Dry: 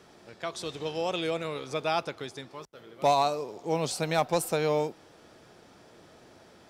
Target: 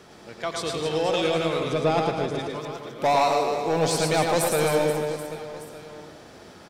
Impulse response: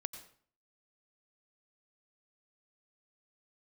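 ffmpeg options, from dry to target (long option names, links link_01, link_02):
-filter_complex "[0:a]asettb=1/sr,asplit=3[link_01][link_02][link_03];[link_01]atrim=end=1.604[link_04];[link_02]atrim=start=1.6:end=2.39,asetpts=PTS-STARTPTS,afade=type=in:duration=0.004:curve=qsin,afade=type=out:start_time=0.786:duration=0.004:curve=qsin,tiltshelf=frequency=710:gain=6[link_05];[link_03]atrim=start=2.386[link_06];[link_04][link_05]acrossfade=duration=0.004:curve1=hsin:curve2=qsin[link_07];[link_07][link_06]acrossfade=duration=0.004:curve1=qsin:curve2=hsin,asoftclip=type=tanh:threshold=-22.5dB,aecho=1:1:110|264|479.6|781.4|1204:0.631|0.398|0.251|0.158|0.1[link_08];[1:a]atrim=start_sample=2205[link_09];[link_08][link_09]afir=irnorm=-1:irlink=0,volume=8dB"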